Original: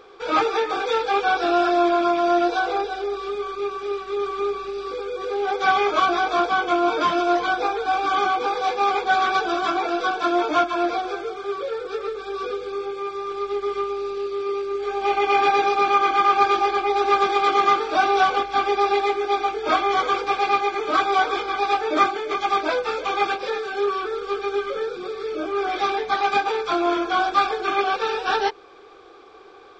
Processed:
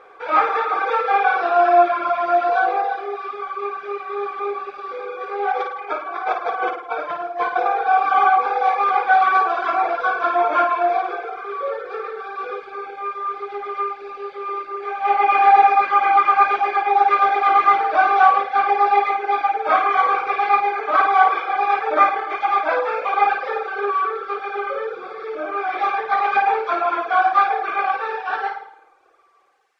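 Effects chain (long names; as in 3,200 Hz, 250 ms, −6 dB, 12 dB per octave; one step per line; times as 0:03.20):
fade-out on the ending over 2.60 s
mains-hum notches 50/100/150/200 Hz
0:05.52–0:07.66: compressor whose output falls as the input rises −27 dBFS, ratio −0.5
background noise blue −58 dBFS
flutter between parallel walls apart 9.3 metres, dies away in 0.84 s
convolution reverb RT60 1.1 s, pre-delay 26 ms, DRR 9 dB
reverb reduction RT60 0.65 s
low-pass filter 4,500 Hz 12 dB per octave
flat-topped bell 1,100 Hz +12 dB 2.5 octaves
level −8.5 dB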